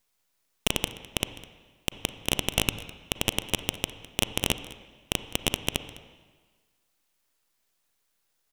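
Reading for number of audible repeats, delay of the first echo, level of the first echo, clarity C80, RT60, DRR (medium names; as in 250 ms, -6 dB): 1, 206 ms, -19.5 dB, 13.0 dB, 1.5 s, 11.5 dB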